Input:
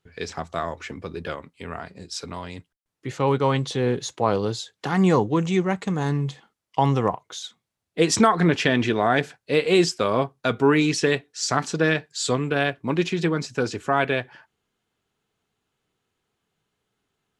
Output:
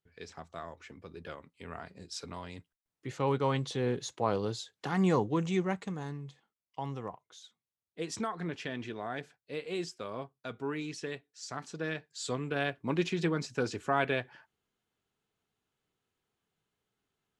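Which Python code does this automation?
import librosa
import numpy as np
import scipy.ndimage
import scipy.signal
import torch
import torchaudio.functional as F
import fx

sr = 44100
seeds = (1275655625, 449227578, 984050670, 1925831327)

y = fx.gain(x, sr, db=fx.line((0.96, -15.0), (1.87, -8.5), (5.71, -8.5), (6.2, -18.0), (11.5, -18.0), (12.89, -7.5)))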